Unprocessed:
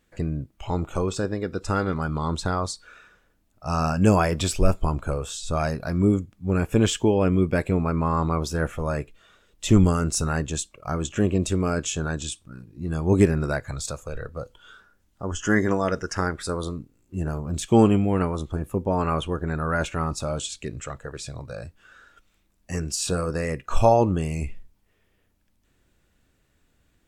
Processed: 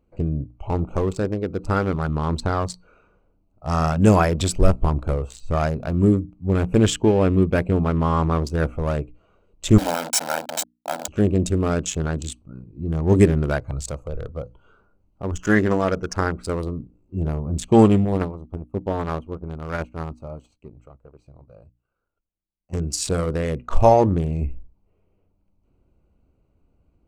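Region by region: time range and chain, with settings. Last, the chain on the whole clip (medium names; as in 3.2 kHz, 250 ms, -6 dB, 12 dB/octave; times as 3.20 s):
9.78–11.08 s: send-on-delta sampling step -22.5 dBFS + high-pass 310 Hz 24 dB/octave + comb 1.3 ms, depth 90%
18.05–22.73 s: power-law waveshaper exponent 1.4 + upward expansion, over -36 dBFS
whole clip: local Wiener filter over 25 samples; peaking EQ 62 Hz +6 dB 0.44 oct; hum notches 60/120/180/240/300 Hz; trim +3.5 dB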